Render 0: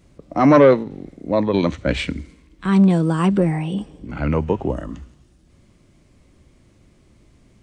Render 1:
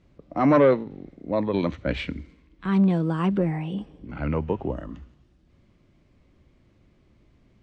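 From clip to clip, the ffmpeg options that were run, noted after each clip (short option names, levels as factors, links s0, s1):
-af "lowpass=4000,volume=0.501"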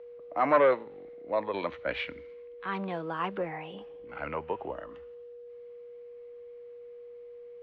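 -filter_complex "[0:a]aeval=exprs='val(0)+0.0126*sin(2*PI*480*n/s)':c=same,acrossover=split=500 3800:gain=0.1 1 0.0891[s0][s1][s2];[s0][s1][s2]amix=inputs=3:normalize=0"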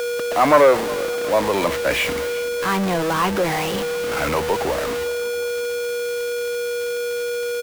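-af "aeval=exprs='val(0)+0.5*0.0422*sgn(val(0))':c=same,aecho=1:1:362|724|1086|1448:0.119|0.0618|0.0321|0.0167,volume=2.51"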